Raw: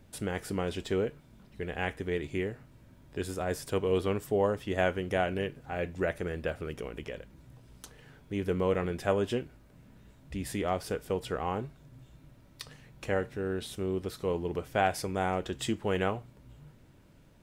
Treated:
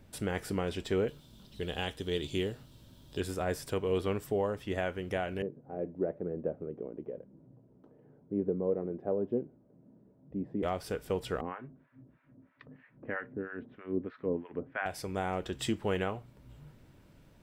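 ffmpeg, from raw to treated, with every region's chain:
-filter_complex "[0:a]asettb=1/sr,asplit=3[s0][s1][s2];[s0]atrim=end=1.084[s3];[s1]atrim=start=1.08:end=3.2,asetpts=PTS-STARTPTS,afade=t=in:d=0.004:c=qsin,afade=t=out:st=2.116:d=0.004:c=qsin,highshelf=f=2700:t=q:w=3:g=7,bandreject=f=700:w=21[s4];[s2]atrim=start=3.196[s5];[s3][s4]acrossfade=d=0.004:c1=hsin:c2=qsin[s6];[s6][s5]acrossfade=d=0.004:c1=qsin:c2=hsin,asettb=1/sr,asplit=3[s7][s8][s9];[s7]atrim=end=5.424[s10];[s8]atrim=start=5.42:end=10.63,asetpts=PTS-STARTPTS,afade=t=in:d=0.004:c=qsin,afade=t=out:st=5.206:d=0.004:c=qsin,aphaser=in_gain=1:out_gain=1:delay=3.3:decay=0.2:speed=1:type=sinusoidal,asuperpass=centerf=310:order=4:qfactor=0.7[s11];[s9]atrim=start=10.626[s12];[s10][s11]acrossfade=d=0.004:c1=hsin:c2=qsin[s13];[s13][s12]acrossfade=d=0.004:c1=qsin:c2=hsin,asettb=1/sr,asplit=3[s14][s15][s16];[s14]atrim=end=11.414[s17];[s15]atrim=start=11.41:end=14.86,asetpts=PTS-STARTPTS,afade=t=in:d=0.004:c=qsin,afade=t=out:st=3.446:d=0.004:c=qsin,highpass=130,equalizer=f=260:t=q:w=4:g=10,equalizer=f=810:t=q:w=4:g=-5,equalizer=f=1700:t=q:w=4:g=4,lowpass=f=2200:w=0.5412,lowpass=f=2200:w=1.3066,acrossover=split=770[s18][s19];[s18]aeval=exprs='val(0)*(1-1/2+1/2*cos(2*PI*3.1*n/s))':c=same[s20];[s19]aeval=exprs='val(0)*(1-1/2-1/2*cos(2*PI*3.1*n/s))':c=same[s21];[s20][s21]amix=inputs=2:normalize=0[s22];[s16]atrim=start=14.856[s23];[s17][s22]acrossfade=d=0.004:c1=hsin:c2=qsin[s24];[s24][s23]acrossfade=d=0.004:c1=qsin:c2=hsin,equalizer=f=9600:t=o:w=0.26:g=-3,bandreject=f=6700:w=17,alimiter=limit=0.0944:level=0:latency=1:release=483"

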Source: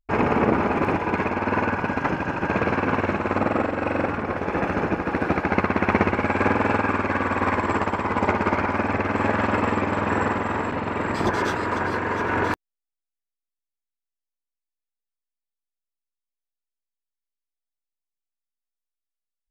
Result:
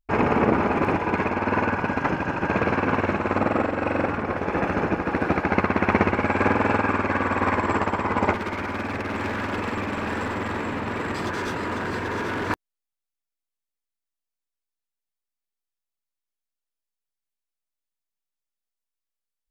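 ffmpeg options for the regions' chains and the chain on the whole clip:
-filter_complex "[0:a]asettb=1/sr,asplit=3[s0][s1][s2];[s0]atrim=end=8.334[s3];[s1]atrim=start=8.33:end=12.5,asetpts=PTS-STARTPTS,afade=t=in:d=0.004:c=qsin,afade=t=out:st=4.166:d=0.004:c=qsin,acrossover=split=99|560|1300[s4][s5][s6][s7];[s4]acompressor=threshold=0.00794:ratio=3[s8];[s5]acompressor=threshold=0.0501:ratio=3[s9];[s6]acompressor=threshold=0.0126:ratio=3[s10];[s7]acompressor=threshold=0.0316:ratio=3[s11];[s8][s9][s10][s11]amix=inputs=4:normalize=0,asoftclip=type=hard:threshold=0.0631,aecho=1:1:787:0.422,atrim=end_sample=183897[s12];[s2]atrim=start=12.496[s13];[s3][s12]acrossfade=d=0.004:c1=hsin:c2=qsin[s14];[s14][s13]acrossfade=d=0.004:c1=qsin:c2=hsin"

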